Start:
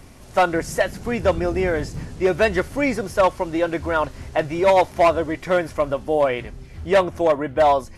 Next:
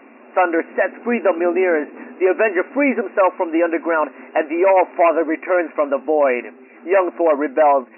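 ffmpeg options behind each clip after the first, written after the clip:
-af "afftfilt=real='re*between(b*sr/4096,220,2800)':imag='im*between(b*sr/4096,220,2800)':win_size=4096:overlap=0.75,alimiter=limit=0.224:level=0:latency=1:release=15,volume=1.88"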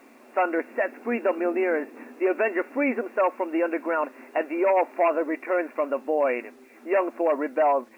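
-af "acrusher=bits=8:mix=0:aa=0.000001,volume=0.422"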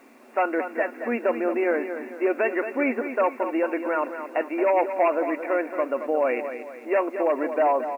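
-af "aecho=1:1:224|448|672|896|1120:0.335|0.141|0.0591|0.0248|0.0104"

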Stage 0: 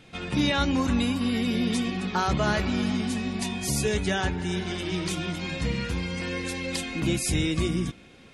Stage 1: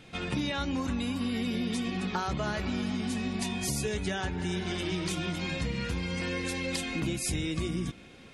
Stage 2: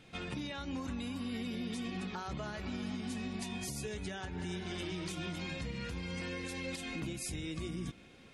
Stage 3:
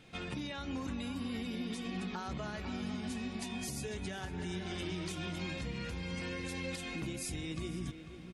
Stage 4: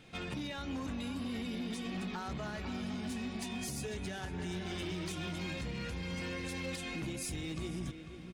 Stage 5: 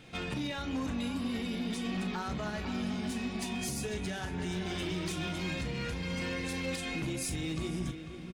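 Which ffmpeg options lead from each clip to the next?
-af "acompressor=threshold=0.0398:ratio=6"
-af "alimiter=level_in=1.06:limit=0.0631:level=0:latency=1:release=109,volume=0.944,volume=0.501"
-filter_complex "[0:a]asplit=2[s0][s1];[s1]adelay=495.6,volume=0.316,highshelf=f=4000:g=-11.2[s2];[s0][s2]amix=inputs=2:normalize=0"
-af "asoftclip=type=hard:threshold=0.0178,volume=1.12"
-filter_complex "[0:a]asplit=2[s0][s1];[s1]adelay=38,volume=0.299[s2];[s0][s2]amix=inputs=2:normalize=0,volume=1.5"

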